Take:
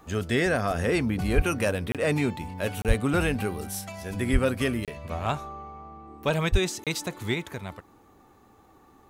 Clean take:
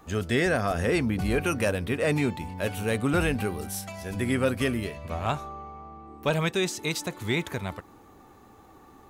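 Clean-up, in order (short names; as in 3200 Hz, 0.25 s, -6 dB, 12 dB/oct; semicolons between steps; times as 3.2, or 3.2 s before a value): de-plosive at 1.35/2.87/4.32/6.51; interpolate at 1.92/2.82/4.85/6.84, 27 ms; gain 0 dB, from 7.34 s +4 dB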